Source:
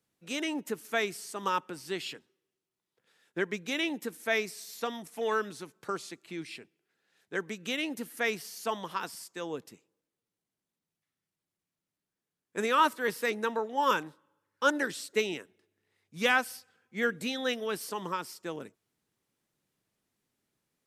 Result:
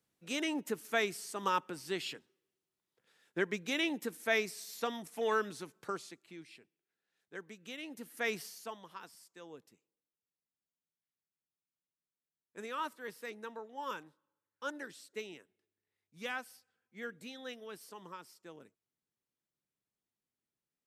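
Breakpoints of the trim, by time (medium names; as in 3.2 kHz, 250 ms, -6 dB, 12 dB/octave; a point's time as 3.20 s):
5.77 s -2 dB
6.47 s -12.5 dB
7.80 s -12.5 dB
8.42 s -2 dB
8.76 s -14 dB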